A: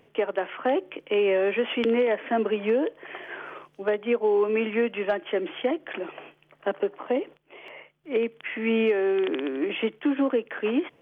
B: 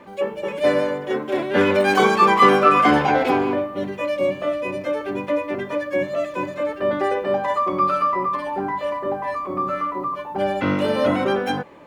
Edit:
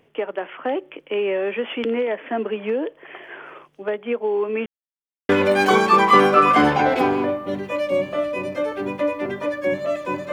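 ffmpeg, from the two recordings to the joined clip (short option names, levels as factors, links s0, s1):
-filter_complex "[0:a]apad=whole_dur=10.32,atrim=end=10.32,asplit=2[s0][s1];[s0]atrim=end=4.66,asetpts=PTS-STARTPTS,afade=t=out:st=4.656:d=0.004:c=hsin[s2];[s1]atrim=start=4.66:end=5.29,asetpts=PTS-STARTPTS,volume=0[s3];[1:a]atrim=start=1.58:end=6.61,asetpts=PTS-STARTPTS,afade=t=in:d=0.004:c=hsin[s4];[s2][s3][s4]concat=n=3:v=0:a=1"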